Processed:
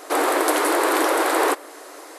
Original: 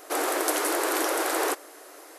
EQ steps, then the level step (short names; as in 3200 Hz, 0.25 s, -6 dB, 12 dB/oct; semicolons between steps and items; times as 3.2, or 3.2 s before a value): ten-band EQ 250 Hz +9 dB, 500 Hz +5 dB, 1000 Hz +8 dB, 2000 Hz +5 dB, 4000 Hz +6 dB, 8000 Hz +6 dB; dynamic EQ 6200 Hz, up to -6 dB, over -39 dBFS, Q 1.2; -1.0 dB